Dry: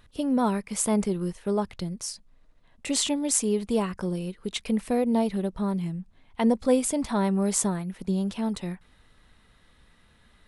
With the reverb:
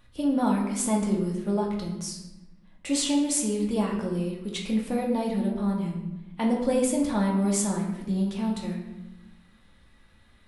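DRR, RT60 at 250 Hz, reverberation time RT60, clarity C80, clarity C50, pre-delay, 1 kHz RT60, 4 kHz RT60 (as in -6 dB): -2.0 dB, 1.5 s, 1.0 s, 7.5 dB, 4.5 dB, 3 ms, 0.95 s, 0.70 s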